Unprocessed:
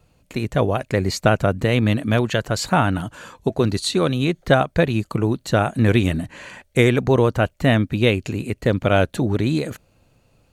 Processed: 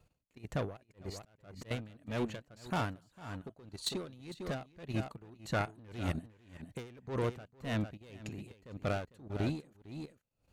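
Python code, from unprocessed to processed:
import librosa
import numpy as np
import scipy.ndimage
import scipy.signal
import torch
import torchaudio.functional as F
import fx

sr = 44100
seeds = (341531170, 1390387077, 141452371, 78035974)

y = 10.0 ** (-17.5 / 20.0) * np.tanh(x / 10.0 ** (-17.5 / 20.0))
y = fx.level_steps(y, sr, step_db=12)
y = fx.dynamic_eq(y, sr, hz=1500.0, q=1.0, threshold_db=-41.0, ratio=4.0, max_db=5, at=(5.24, 5.65))
y = y + 10.0 ** (-10.0 / 20.0) * np.pad(y, (int(452 * sr / 1000.0), 0))[:len(y)]
y = fx.auto_swell(y, sr, attack_ms=361.0, at=(0.77, 1.71))
y = fx.high_shelf(y, sr, hz=9400.0, db=6.5, at=(2.7, 3.18))
y = y * 10.0 ** (-23 * (0.5 - 0.5 * np.cos(2.0 * np.pi * 1.8 * np.arange(len(y)) / sr)) / 20.0)
y = F.gain(torch.from_numpy(y), -7.0).numpy()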